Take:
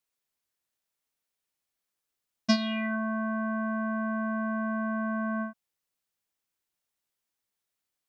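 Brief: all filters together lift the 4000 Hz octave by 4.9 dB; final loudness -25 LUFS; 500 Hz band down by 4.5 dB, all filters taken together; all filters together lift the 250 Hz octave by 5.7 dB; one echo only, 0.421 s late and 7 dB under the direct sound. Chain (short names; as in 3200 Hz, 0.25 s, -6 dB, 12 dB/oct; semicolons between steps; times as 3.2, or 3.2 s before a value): bell 250 Hz +8 dB; bell 500 Hz -9 dB; bell 4000 Hz +6.5 dB; echo 0.421 s -7 dB; gain +2.5 dB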